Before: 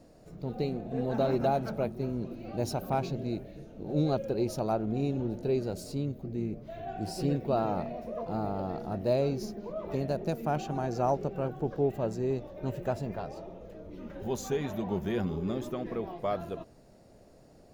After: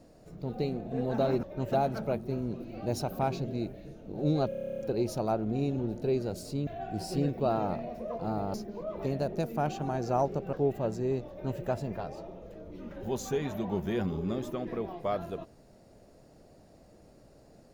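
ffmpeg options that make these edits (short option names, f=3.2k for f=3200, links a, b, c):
-filter_complex "[0:a]asplit=16[a][b][c][d][e][f][g][h][i][j][k][l][m][n][o][p];[a]atrim=end=1.432[q];[b]atrim=start=12.488:end=12.782[r];[c]atrim=start=1.428:end=4.232[s];[d]atrim=start=4.198:end=4.232[t];[e]atrim=start=4.198:end=4.232[u];[f]atrim=start=4.198:end=4.232[v];[g]atrim=start=4.198:end=4.232[w];[h]atrim=start=4.198:end=4.232[x];[i]atrim=start=4.198:end=4.232[y];[j]atrim=start=4.198:end=4.232[z];[k]atrim=start=4.198:end=4.232[aa];[l]atrim=start=4.198:end=4.232[ab];[m]atrim=start=4.198:end=6.082[ac];[n]atrim=start=6.738:end=8.612[ad];[o]atrim=start=9.428:end=11.422[ae];[p]atrim=start=11.718[af];[q][r]acrossfade=d=0.004:c1=hsin:c2=hsin[ag];[ag][s]acrossfade=d=0.004:c1=hsin:c2=hsin[ah];[ah][t]acrossfade=d=0.004:c1=hsin:c2=hsin[ai];[ai][u]acrossfade=d=0.004:c1=hsin:c2=hsin[aj];[aj][v]acrossfade=d=0.004:c1=hsin:c2=hsin[ak];[ak][w]acrossfade=d=0.004:c1=hsin:c2=hsin[al];[al][x]acrossfade=d=0.004:c1=hsin:c2=hsin[am];[am][y]acrossfade=d=0.004:c1=hsin:c2=hsin[an];[an][z]acrossfade=d=0.004:c1=hsin:c2=hsin[ao];[ao][aa]acrossfade=d=0.004:c1=hsin:c2=hsin[ap];[ap][ab]acrossfade=d=0.004:c1=hsin:c2=hsin[aq];[aq][ac]acrossfade=d=0.004:c1=hsin:c2=hsin[ar];[ar][ad]acrossfade=d=0.004:c1=hsin:c2=hsin[as];[as][ae]acrossfade=d=0.004:c1=hsin:c2=hsin[at];[at][af]acrossfade=d=0.004:c1=hsin:c2=hsin"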